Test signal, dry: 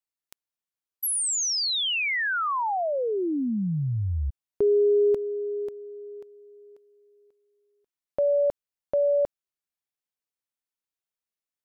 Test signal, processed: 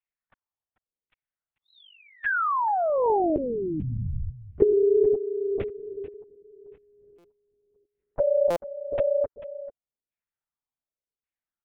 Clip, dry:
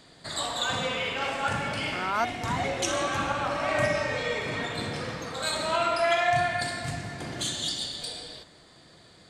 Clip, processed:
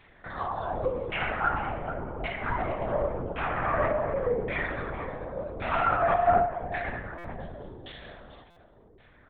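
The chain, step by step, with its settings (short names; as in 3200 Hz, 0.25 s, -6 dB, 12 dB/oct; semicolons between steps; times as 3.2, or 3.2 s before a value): dynamic EQ 440 Hz, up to +3 dB, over -38 dBFS, Q 4.5; LFO low-pass saw down 0.89 Hz 370–2500 Hz; echo 0.442 s -13.5 dB; LPC vocoder at 8 kHz whisper; stuck buffer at 7.18/8.5, samples 256, times 10; gain -3 dB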